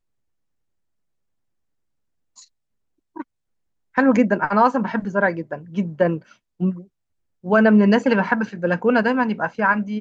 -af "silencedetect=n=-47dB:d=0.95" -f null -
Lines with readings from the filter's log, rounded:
silence_start: 0.00
silence_end: 2.37 | silence_duration: 2.37